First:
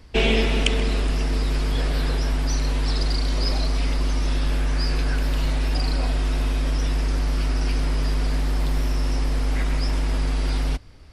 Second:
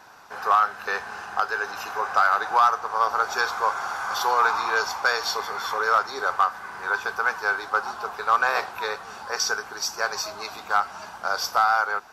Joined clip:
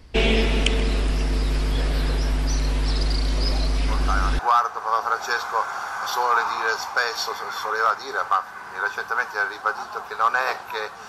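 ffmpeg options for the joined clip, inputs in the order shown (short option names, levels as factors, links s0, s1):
-filter_complex "[1:a]asplit=2[s0][s1];[0:a]apad=whole_dur=11.08,atrim=end=11.08,atrim=end=4.392[s2];[s1]atrim=start=2.468:end=9.16[s3];[s0]atrim=start=1.96:end=2.47,asetpts=PTS-STARTPTS,volume=0.473,afade=t=in:d=0.004:c=hsin,afade=t=out:st=0.506:d=0.004:c=hsin,adelay=3880[s4];[s2][s3]acrossfade=d=0.004:c1=hsin:c2=hsin[s5];[s5][s4]amix=inputs=2:normalize=0"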